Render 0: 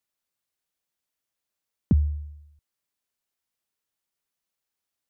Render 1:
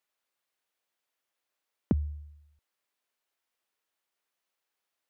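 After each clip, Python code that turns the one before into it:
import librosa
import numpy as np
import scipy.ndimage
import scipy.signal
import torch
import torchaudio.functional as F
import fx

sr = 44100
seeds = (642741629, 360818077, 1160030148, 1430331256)

y = fx.bass_treble(x, sr, bass_db=-14, treble_db=-7)
y = y * librosa.db_to_amplitude(4.5)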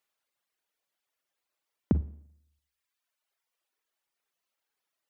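y = fx.rev_schroeder(x, sr, rt60_s=0.67, comb_ms=38, drr_db=7.5)
y = fx.dereverb_blind(y, sr, rt60_s=1.3)
y = y * librosa.db_to_amplitude(1.5)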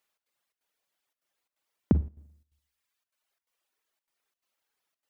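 y = fx.step_gate(x, sr, bpm=173, pattern='xx.xxx.xxxx', floor_db=-12.0, edge_ms=4.5)
y = y * librosa.db_to_amplitude(2.5)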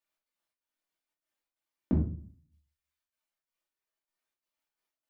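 y = fx.room_shoebox(x, sr, seeds[0], volume_m3=270.0, walls='furnished', distance_m=2.6)
y = fx.am_noise(y, sr, seeds[1], hz=5.7, depth_pct=55)
y = y * librosa.db_to_amplitude(-9.0)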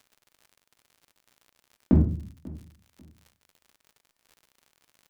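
y = fx.dmg_crackle(x, sr, seeds[2], per_s=78.0, level_db=-51.0)
y = fx.echo_feedback(y, sr, ms=542, feedback_pct=23, wet_db=-21)
y = y * librosa.db_to_amplitude(8.0)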